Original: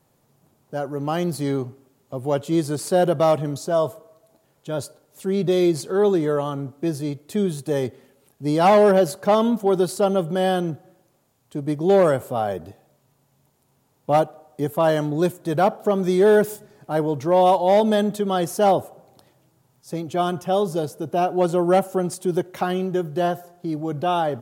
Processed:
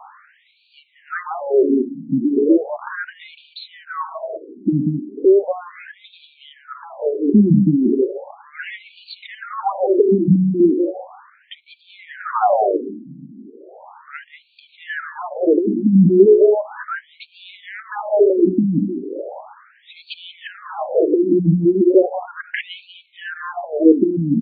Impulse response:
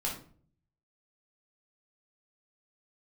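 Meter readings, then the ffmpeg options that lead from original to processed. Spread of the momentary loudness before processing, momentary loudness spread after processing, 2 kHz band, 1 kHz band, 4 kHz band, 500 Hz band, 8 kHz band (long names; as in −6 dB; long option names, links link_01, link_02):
13 LU, 21 LU, +2.5 dB, −3.5 dB, −3.5 dB, +2.0 dB, below −40 dB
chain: -filter_complex "[0:a]bandreject=frequency=60:width_type=h:width=6,bandreject=frequency=120:width_type=h:width=6,bandreject=frequency=180:width_type=h:width=6,bandreject=frequency=240:width_type=h:width=6,bandreject=frequency=300:width_type=h:width=6,bandreject=frequency=360:width_type=h:width=6,bandreject=frequency=420:width_type=h:width=6,asplit=2[link_01][link_02];[link_02]volume=16.5dB,asoftclip=hard,volume=-16.5dB,volume=-7.5dB[link_03];[link_01][link_03]amix=inputs=2:normalize=0,equalizer=frequency=120:width=0.3:gain=6.5,acompressor=threshold=-28dB:ratio=4,highshelf=frequency=2000:width_type=q:width=1.5:gain=-7,asplit=2[link_04][link_05];[link_05]aecho=0:1:190:0.237[link_06];[link_04][link_06]amix=inputs=2:normalize=0,alimiter=level_in=26.5dB:limit=-1dB:release=50:level=0:latency=1,afftfilt=real='re*between(b*sr/1024,230*pow(3300/230,0.5+0.5*sin(2*PI*0.36*pts/sr))/1.41,230*pow(3300/230,0.5+0.5*sin(2*PI*0.36*pts/sr))*1.41)':imag='im*between(b*sr/1024,230*pow(3300/230,0.5+0.5*sin(2*PI*0.36*pts/sr))/1.41,230*pow(3300/230,0.5+0.5*sin(2*PI*0.36*pts/sr))*1.41)':win_size=1024:overlap=0.75"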